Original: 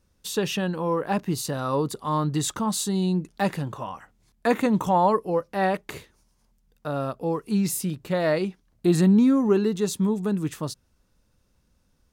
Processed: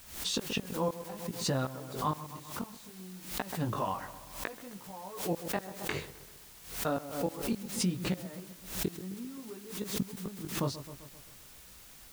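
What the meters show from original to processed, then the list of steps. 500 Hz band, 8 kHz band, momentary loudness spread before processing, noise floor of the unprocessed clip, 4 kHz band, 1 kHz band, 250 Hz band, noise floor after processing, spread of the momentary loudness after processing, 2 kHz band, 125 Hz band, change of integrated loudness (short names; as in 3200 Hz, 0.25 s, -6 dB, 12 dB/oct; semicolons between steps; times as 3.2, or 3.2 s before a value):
-12.5 dB, -6.5 dB, 12 LU, -67 dBFS, -3.5 dB, -11.5 dB, -14.0 dB, -53 dBFS, 15 LU, -8.0 dB, -10.5 dB, -11.5 dB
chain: flipped gate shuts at -18 dBFS, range -30 dB; chorus 0.61 Hz, delay 15 ms, depth 6.7 ms; LPF 6100 Hz; on a send: dark delay 0.13 s, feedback 54%, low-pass 1500 Hz, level -16 dB; on the sum: compressor 2.5:1, threshold -38 dBFS, peak gain reduction 9 dB; added noise white -61 dBFS; backwards sustainer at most 96 dB/s; gain +7 dB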